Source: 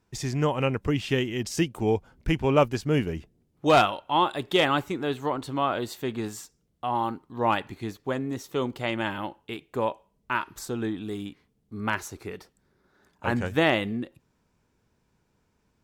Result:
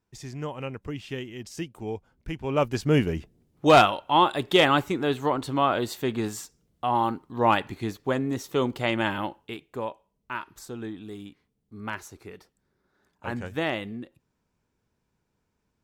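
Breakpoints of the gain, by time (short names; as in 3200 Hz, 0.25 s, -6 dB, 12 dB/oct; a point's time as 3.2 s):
2.38 s -9 dB
2.84 s +3 dB
9.21 s +3 dB
9.9 s -6 dB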